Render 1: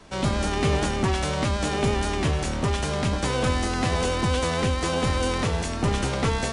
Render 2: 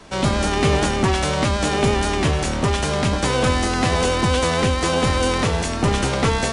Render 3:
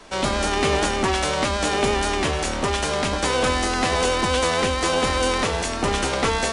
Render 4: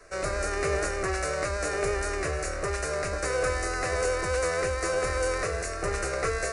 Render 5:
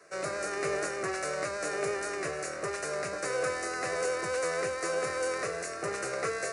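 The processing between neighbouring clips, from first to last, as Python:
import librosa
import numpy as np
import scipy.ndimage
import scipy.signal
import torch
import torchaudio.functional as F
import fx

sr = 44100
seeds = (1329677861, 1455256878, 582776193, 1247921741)

y1 = fx.low_shelf(x, sr, hz=160.0, db=-3.0)
y1 = y1 * 10.0 ** (6.0 / 20.0)
y2 = fx.peak_eq(y1, sr, hz=120.0, db=-12.0, octaves=1.6)
y3 = fx.fixed_phaser(y2, sr, hz=890.0, stages=6)
y3 = y3 * 10.0 ** (-4.0 / 20.0)
y4 = scipy.signal.sosfilt(scipy.signal.butter(4, 130.0, 'highpass', fs=sr, output='sos'), y3)
y4 = y4 * 10.0 ** (-3.5 / 20.0)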